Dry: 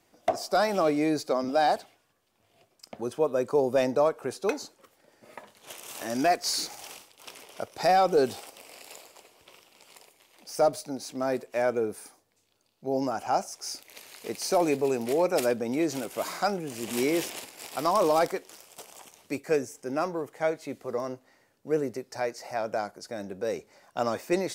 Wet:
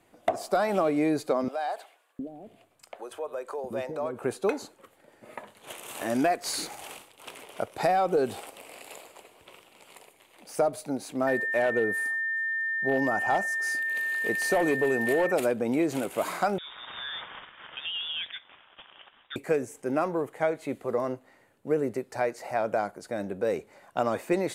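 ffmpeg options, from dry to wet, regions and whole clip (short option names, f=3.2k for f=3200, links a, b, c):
-filter_complex "[0:a]asettb=1/sr,asplit=3[a][b][c];[a]atrim=end=1.484[d];[b]atrim=start=1.48:end=4.19,asetpts=PTS-STARTPTS,afade=t=in:d=0.004:c=qsin,afade=t=out:st=2.706:d=0.004:c=qsin,acompressor=threshold=-35dB:ratio=2.5:attack=3.2:release=140:knee=1:detection=peak,acrossover=split=420[e][f];[e]adelay=710[g];[g][f]amix=inputs=2:normalize=0,atrim=end_sample=119511[h];[c]atrim=start=4.186[i];[d][h]acrossfade=d=0.004:c1=hsin:c2=qsin[j];[j][i]acrossfade=d=0.004:c1=qsin:c2=hsin,asettb=1/sr,asplit=3[k][l][m];[k]atrim=end=11.274[n];[l]atrim=start=11.27:end=15.32,asetpts=PTS-STARTPTS,afade=t=in:d=0.004:c=qsin,afade=t=out:st=4.046:d=0.004:c=qsin,equalizer=f=12k:w=5:g=5.5,aeval=exprs='val(0)+0.0316*sin(2*PI*1800*n/s)':c=same,asoftclip=type=hard:threshold=-19dB[o];[m]atrim=start=15.316[p];[n][o]acrossfade=d=0.004:c1=hsin:c2=qsin[q];[q][p]acrossfade=d=0.004:c1=qsin:c2=hsin,asettb=1/sr,asplit=3[r][s][t];[r]atrim=end=16.584[u];[s]atrim=start=16.58:end=19.36,asetpts=PTS-STARTPTS,afade=t=in:d=0.004:c=qsin,afade=t=out:st=2.776:d=0.004:c=qsin,lowshelf=f=480:g=-12,acompressor=threshold=-38dB:ratio=2:attack=3.2:release=140:knee=1:detection=peak,lowpass=f=3.3k:t=q:w=0.5098,lowpass=f=3.3k:t=q:w=0.6013,lowpass=f=3.3k:t=q:w=0.9,lowpass=f=3.3k:t=q:w=2.563,afreqshift=-3900[v];[t]atrim=start=19.356[w];[u][v]acrossfade=d=0.004:c1=hsin:c2=qsin[x];[x][w]acrossfade=d=0.004:c1=qsin:c2=hsin,lowpass=12k,equalizer=f=5.4k:w=1.9:g=-13,acompressor=threshold=-25dB:ratio=6,volume=4dB"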